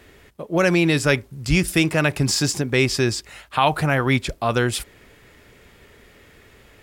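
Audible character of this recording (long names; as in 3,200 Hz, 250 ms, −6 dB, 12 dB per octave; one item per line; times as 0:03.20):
background noise floor −52 dBFS
spectral slope −4.5 dB per octave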